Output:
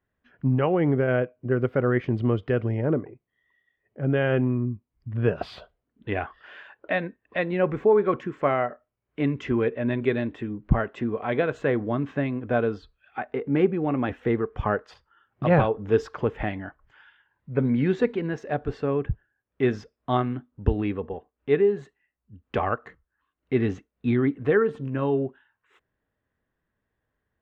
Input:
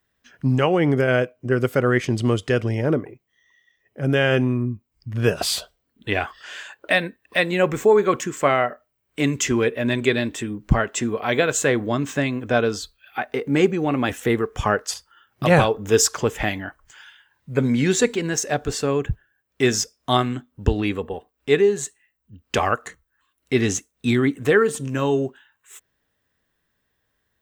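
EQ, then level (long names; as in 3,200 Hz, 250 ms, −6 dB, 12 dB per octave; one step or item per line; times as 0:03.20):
high-frequency loss of the air 350 metres
high-shelf EQ 2,900 Hz −9 dB
−2.5 dB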